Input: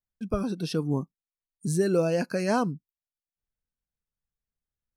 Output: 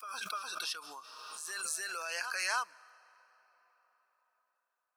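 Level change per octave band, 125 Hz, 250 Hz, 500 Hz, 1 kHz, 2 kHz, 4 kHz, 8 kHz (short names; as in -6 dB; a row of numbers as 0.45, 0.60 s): under -40 dB, under -35 dB, -23.5 dB, -4.5 dB, +2.5 dB, +3.0 dB, +3.0 dB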